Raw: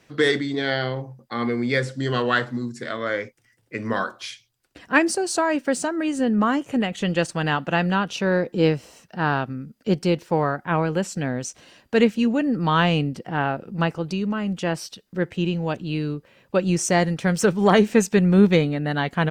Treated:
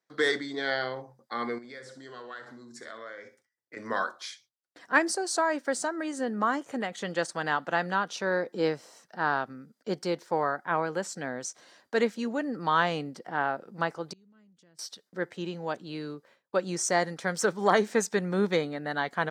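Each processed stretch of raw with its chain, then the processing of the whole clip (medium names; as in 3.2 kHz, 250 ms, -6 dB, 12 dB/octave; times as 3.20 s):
1.58–3.77 s: compression 20:1, threshold -32 dBFS + flutter echo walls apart 10.9 m, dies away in 0.32 s
14.13–14.79 s: amplifier tone stack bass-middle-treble 10-0-1 + compression 5:1, threshold -45 dBFS
whole clip: peaking EQ 2.7 kHz -12.5 dB 0.47 oct; gate with hold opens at -45 dBFS; frequency weighting A; trim -3 dB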